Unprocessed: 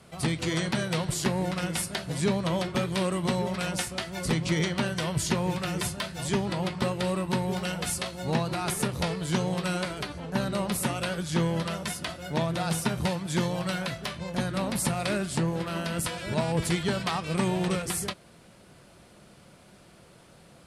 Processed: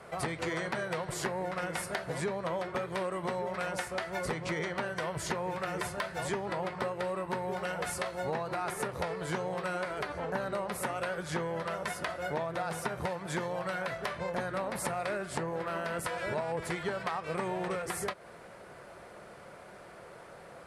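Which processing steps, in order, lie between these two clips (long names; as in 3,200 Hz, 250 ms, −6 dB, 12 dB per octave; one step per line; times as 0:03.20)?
flat-topped bell 910 Hz +11.5 dB 2.8 octaves
downward compressor, threshold −28 dBFS, peak gain reduction 13.5 dB
level −3.5 dB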